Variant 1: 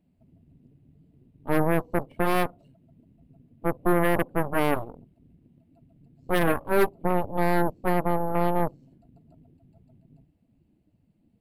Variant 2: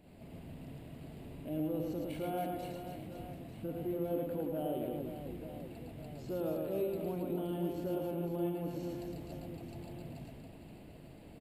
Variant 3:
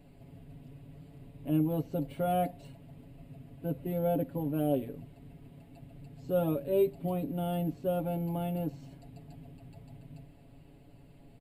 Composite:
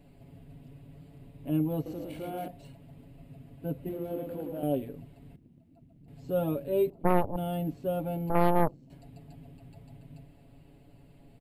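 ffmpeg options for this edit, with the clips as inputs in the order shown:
-filter_complex "[1:a]asplit=2[s0][s1];[0:a]asplit=3[s2][s3][s4];[2:a]asplit=6[s5][s6][s7][s8][s9][s10];[s5]atrim=end=1.862[s11];[s0]atrim=start=1.858:end=2.482[s12];[s6]atrim=start=2.478:end=3.892[s13];[s1]atrim=start=3.888:end=4.632[s14];[s7]atrim=start=4.628:end=5.362[s15];[s2]atrim=start=5.358:end=6.082[s16];[s8]atrim=start=6.078:end=6.902[s17];[s3]atrim=start=6.898:end=7.362[s18];[s9]atrim=start=7.358:end=8.302[s19];[s4]atrim=start=8.298:end=8.902[s20];[s10]atrim=start=8.898[s21];[s11][s12]acrossfade=d=0.004:c1=hsin:c2=hsin[s22];[s22][s13]acrossfade=d=0.004:c1=hsin:c2=hsin[s23];[s23][s14]acrossfade=d=0.004:c1=hsin:c2=hsin[s24];[s24][s15]acrossfade=d=0.004:c1=hsin:c2=hsin[s25];[s25][s16]acrossfade=d=0.004:c1=hsin:c2=hsin[s26];[s26][s17]acrossfade=d=0.004:c1=hsin:c2=hsin[s27];[s27][s18]acrossfade=d=0.004:c1=hsin:c2=hsin[s28];[s28][s19]acrossfade=d=0.004:c1=hsin:c2=hsin[s29];[s29][s20]acrossfade=d=0.004:c1=hsin:c2=hsin[s30];[s30][s21]acrossfade=d=0.004:c1=hsin:c2=hsin"

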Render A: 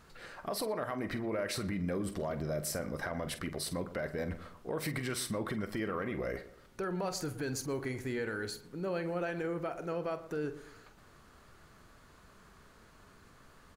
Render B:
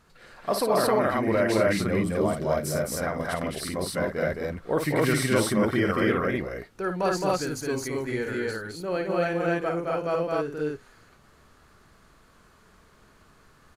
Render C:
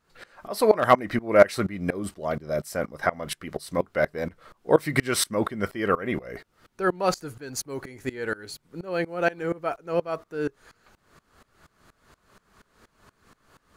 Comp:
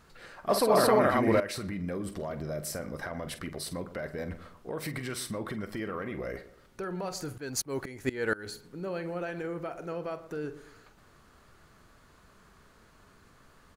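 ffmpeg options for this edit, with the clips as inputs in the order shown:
-filter_complex "[0:a]asplit=3[s0][s1][s2];[s0]atrim=end=0.492[s3];[1:a]atrim=start=0.488:end=1.402[s4];[s1]atrim=start=1.398:end=7.362[s5];[2:a]atrim=start=7.358:end=8.462[s6];[s2]atrim=start=8.458[s7];[s3][s4]acrossfade=d=0.004:c1=hsin:c2=hsin[s8];[s8][s5]acrossfade=d=0.004:c1=hsin:c2=hsin[s9];[s9][s6]acrossfade=d=0.004:c1=hsin:c2=hsin[s10];[s10][s7]acrossfade=d=0.004:c1=hsin:c2=hsin"

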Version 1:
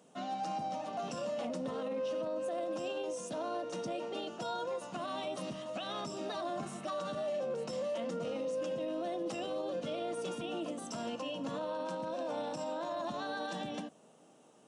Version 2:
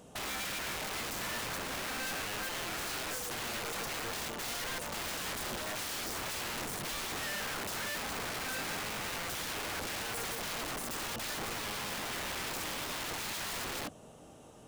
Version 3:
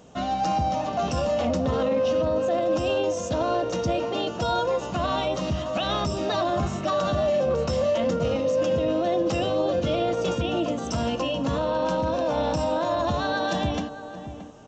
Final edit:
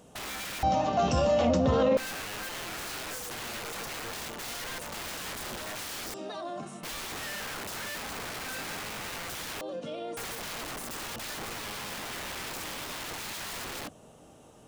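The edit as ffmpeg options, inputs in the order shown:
-filter_complex "[0:a]asplit=2[s0][s1];[1:a]asplit=4[s2][s3][s4][s5];[s2]atrim=end=0.632[s6];[2:a]atrim=start=0.628:end=1.972[s7];[s3]atrim=start=1.968:end=6.142[s8];[s0]atrim=start=6.138:end=6.832[s9];[s4]atrim=start=6.828:end=9.612[s10];[s1]atrim=start=9.608:end=10.172[s11];[s5]atrim=start=10.168[s12];[s6][s7]acrossfade=d=0.004:c1=hsin:c2=hsin[s13];[s13][s8]acrossfade=d=0.004:c1=hsin:c2=hsin[s14];[s14][s9]acrossfade=d=0.004:c1=hsin:c2=hsin[s15];[s15][s10]acrossfade=d=0.004:c1=hsin:c2=hsin[s16];[s16][s11]acrossfade=d=0.004:c1=hsin:c2=hsin[s17];[s17][s12]acrossfade=d=0.004:c1=hsin:c2=hsin"

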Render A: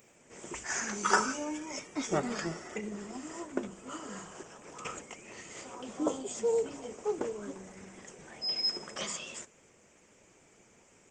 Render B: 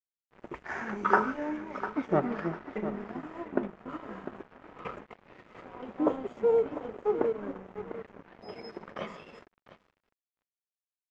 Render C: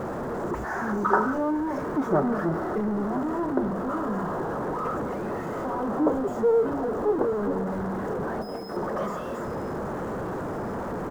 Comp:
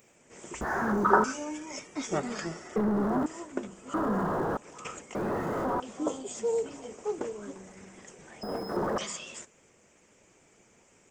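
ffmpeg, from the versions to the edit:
-filter_complex "[2:a]asplit=5[s0][s1][s2][s3][s4];[0:a]asplit=6[s5][s6][s7][s8][s9][s10];[s5]atrim=end=0.612[s11];[s0]atrim=start=0.608:end=1.242[s12];[s6]atrim=start=1.238:end=2.762[s13];[s1]atrim=start=2.758:end=3.262[s14];[s7]atrim=start=3.258:end=3.942[s15];[s2]atrim=start=3.938:end=4.572[s16];[s8]atrim=start=4.568:end=5.152[s17];[s3]atrim=start=5.148:end=5.802[s18];[s9]atrim=start=5.798:end=8.432[s19];[s4]atrim=start=8.428:end=8.982[s20];[s10]atrim=start=8.978[s21];[s11][s12]acrossfade=d=0.004:c1=hsin:c2=hsin[s22];[s22][s13]acrossfade=d=0.004:c1=hsin:c2=hsin[s23];[s23][s14]acrossfade=d=0.004:c1=hsin:c2=hsin[s24];[s24][s15]acrossfade=d=0.004:c1=hsin:c2=hsin[s25];[s25][s16]acrossfade=d=0.004:c1=hsin:c2=hsin[s26];[s26][s17]acrossfade=d=0.004:c1=hsin:c2=hsin[s27];[s27][s18]acrossfade=d=0.004:c1=hsin:c2=hsin[s28];[s28][s19]acrossfade=d=0.004:c1=hsin:c2=hsin[s29];[s29][s20]acrossfade=d=0.004:c1=hsin:c2=hsin[s30];[s30][s21]acrossfade=d=0.004:c1=hsin:c2=hsin"

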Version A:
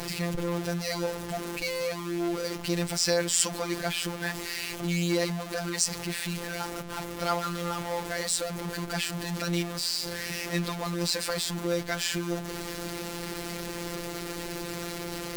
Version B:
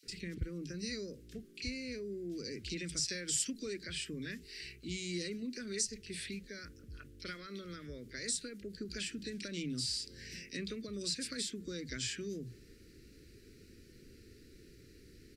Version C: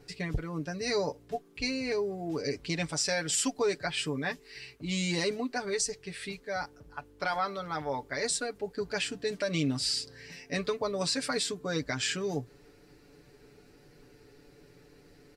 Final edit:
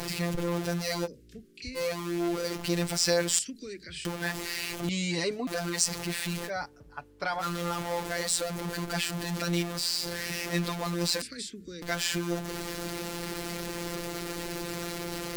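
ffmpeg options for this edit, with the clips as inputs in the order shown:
-filter_complex "[1:a]asplit=3[s0][s1][s2];[2:a]asplit=2[s3][s4];[0:a]asplit=6[s5][s6][s7][s8][s9][s10];[s5]atrim=end=1.08[s11];[s0]atrim=start=1.04:end=1.78[s12];[s6]atrim=start=1.74:end=3.392[s13];[s1]atrim=start=3.388:end=4.052[s14];[s7]atrim=start=4.048:end=4.892[s15];[s3]atrim=start=4.888:end=5.472[s16];[s8]atrim=start=5.468:end=6.51[s17];[s4]atrim=start=6.45:end=7.44[s18];[s9]atrim=start=7.38:end=11.222[s19];[s2]atrim=start=11.218:end=11.822[s20];[s10]atrim=start=11.818[s21];[s11][s12]acrossfade=d=0.04:c1=tri:c2=tri[s22];[s22][s13]acrossfade=d=0.04:c1=tri:c2=tri[s23];[s23][s14]acrossfade=d=0.004:c1=hsin:c2=hsin[s24];[s24][s15]acrossfade=d=0.004:c1=hsin:c2=hsin[s25];[s25][s16]acrossfade=d=0.004:c1=hsin:c2=hsin[s26];[s26][s17]acrossfade=d=0.004:c1=hsin:c2=hsin[s27];[s27][s18]acrossfade=d=0.06:c1=tri:c2=tri[s28];[s28][s19]acrossfade=d=0.06:c1=tri:c2=tri[s29];[s29][s20]acrossfade=d=0.004:c1=hsin:c2=hsin[s30];[s30][s21]acrossfade=d=0.004:c1=hsin:c2=hsin"

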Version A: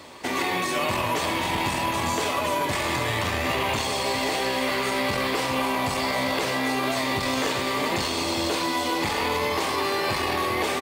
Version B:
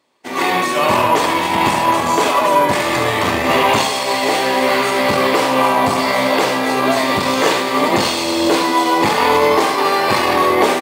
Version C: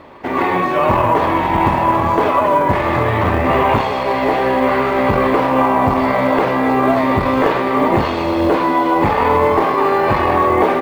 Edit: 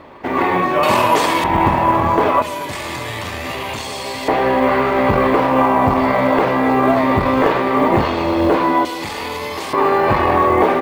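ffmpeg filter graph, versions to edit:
-filter_complex "[0:a]asplit=2[s0][s1];[2:a]asplit=4[s2][s3][s4][s5];[s2]atrim=end=0.832[s6];[1:a]atrim=start=0.828:end=1.442[s7];[s3]atrim=start=1.438:end=2.422[s8];[s0]atrim=start=2.418:end=4.282[s9];[s4]atrim=start=4.278:end=8.852[s10];[s1]atrim=start=8.848:end=9.732[s11];[s5]atrim=start=9.728[s12];[s6][s7]acrossfade=d=0.004:c1=hsin:c2=hsin[s13];[s13][s8]acrossfade=d=0.004:c1=hsin:c2=hsin[s14];[s14][s9]acrossfade=d=0.004:c1=hsin:c2=hsin[s15];[s15][s10]acrossfade=d=0.004:c1=hsin:c2=hsin[s16];[s16][s11]acrossfade=d=0.004:c1=hsin:c2=hsin[s17];[s17][s12]acrossfade=d=0.004:c1=hsin:c2=hsin"

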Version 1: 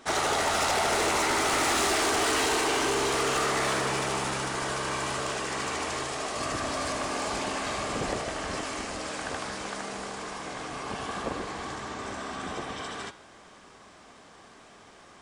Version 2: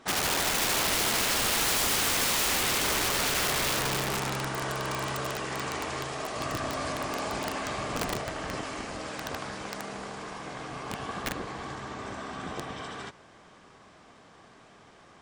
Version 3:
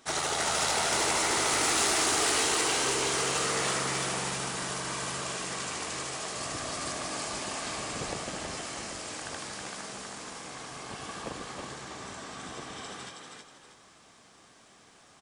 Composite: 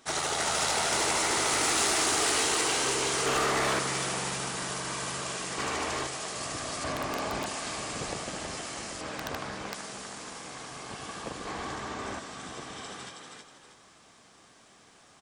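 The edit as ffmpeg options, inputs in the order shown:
-filter_complex "[0:a]asplit=3[s0][s1][s2];[1:a]asplit=2[s3][s4];[2:a]asplit=6[s5][s6][s7][s8][s9][s10];[s5]atrim=end=3.262[s11];[s0]atrim=start=3.258:end=3.792[s12];[s6]atrim=start=3.788:end=5.582[s13];[s1]atrim=start=5.578:end=6.072[s14];[s7]atrim=start=6.068:end=6.842[s15];[s3]atrim=start=6.838:end=7.462[s16];[s8]atrim=start=7.458:end=9.012[s17];[s4]atrim=start=9.008:end=9.742[s18];[s9]atrim=start=9.738:end=11.452[s19];[s2]atrim=start=11.448:end=12.192[s20];[s10]atrim=start=12.188[s21];[s11][s12]acrossfade=d=0.004:c1=hsin:c2=hsin[s22];[s22][s13]acrossfade=d=0.004:c1=hsin:c2=hsin[s23];[s23][s14]acrossfade=d=0.004:c1=hsin:c2=hsin[s24];[s24][s15]acrossfade=d=0.004:c1=hsin:c2=hsin[s25];[s25][s16]acrossfade=d=0.004:c1=hsin:c2=hsin[s26];[s26][s17]acrossfade=d=0.004:c1=hsin:c2=hsin[s27];[s27][s18]acrossfade=d=0.004:c1=hsin:c2=hsin[s28];[s28][s19]acrossfade=d=0.004:c1=hsin:c2=hsin[s29];[s29][s20]acrossfade=d=0.004:c1=hsin:c2=hsin[s30];[s30][s21]acrossfade=d=0.004:c1=hsin:c2=hsin"

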